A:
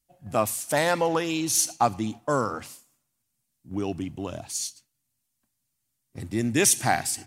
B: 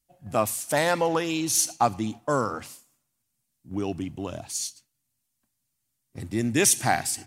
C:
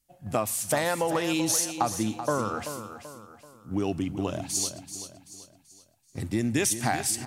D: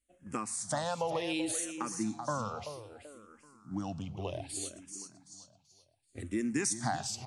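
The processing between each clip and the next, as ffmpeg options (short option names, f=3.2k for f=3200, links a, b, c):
-af anull
-filter_complex "[0:a]acompressor=threshold=-25dB:ratio=10,asplit=2[a][b];[b]aecho=0:1:384|768|1152|1536:0.299|0.122|0.0502|0.0206[c];[a][c]amix=inputs=2:normalize=0,volume=3dB"
-filter_complex "[0:a]aresample=22050,aresample=44100,asplit=2[a][b];[b]afreqshift=-0.65[c];[a][c]amix=inputs=2:normalize=1,volume=-4.5dB"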